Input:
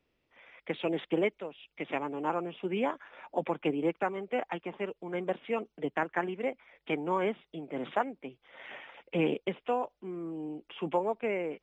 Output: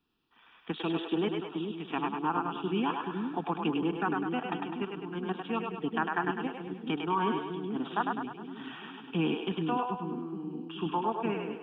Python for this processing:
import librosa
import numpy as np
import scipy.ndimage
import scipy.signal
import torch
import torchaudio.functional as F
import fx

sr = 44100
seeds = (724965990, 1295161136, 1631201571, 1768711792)

p1 = fx.low_shelf_res(x, sr, hz=140.0, db=-6.0, q=1.5)
p2 = fx.fixed_phaser(p1, sr, hz=2100.0, stages=6)
p3 = fx.level_steps(p2, sr, step_db=19)
p4 = p2 + F.gain(torch.from_numpy(p3), 1.0).numpy()
y = fx.echo_split(p4, sr, split_hz=380.0, low_ms=427, high_ms=102, feedback_pct=52, wet_db=-3.5)